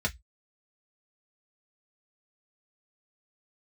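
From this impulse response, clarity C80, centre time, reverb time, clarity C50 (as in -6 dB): 37.5 dB, 6 ms, 0.10 s, 24.5 dB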